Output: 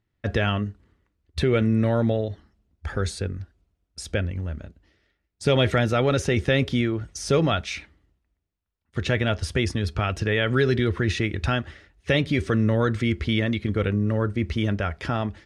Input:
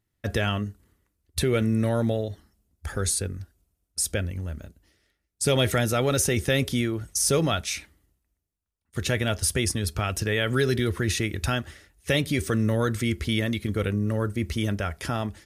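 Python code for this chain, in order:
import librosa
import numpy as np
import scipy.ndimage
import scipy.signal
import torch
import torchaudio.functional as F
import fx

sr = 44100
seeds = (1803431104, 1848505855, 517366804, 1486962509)

y = scipy.signal.sosfilt(scipy.signal.butter(2, 3600.0, 'lowpass', fs=sr, output='sos'), x)
y = y * librosa.db_to_amplitude(2.5)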